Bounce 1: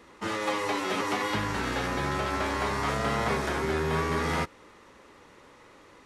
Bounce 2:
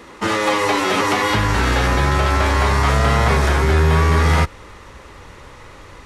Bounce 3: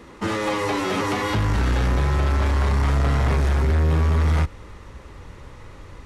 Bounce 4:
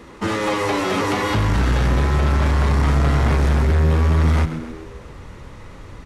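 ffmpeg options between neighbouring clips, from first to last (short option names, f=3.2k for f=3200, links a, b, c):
-filter_complex "[0:a]asubboost=boost=6.5:cutoff=100,asplit=2[a][b];[b]alimiter=limit=-22dB:level=0:latency=1,volume=1.5dB[c];[a][c]amix=inputs=2:normalize=0,volume=6dB"
-af "lowshelf=f=330:g=9.5,asoftclip=type=tanh:threshold=-8dB,volume=-7dB"
-filter_complex "[0:a]asplit=6[a][b][c][d][e][f];[b]adelay=132,afreqshift=81,volume=-12dB[g];[c]adelay=264,afreqshift=162,volume=-17.7dB[h];[d]adelay=396,afreqshift=243,volume=-23.4dB[i];[e]adelay=528,afreqshift=324,volume=-29dB[j];[f]adelay=660,afreqshift=405,volume=-34.7dB[k];[a][g][h][i][j][k]amix=inputs=6:normalize=0,volume=2.5dB"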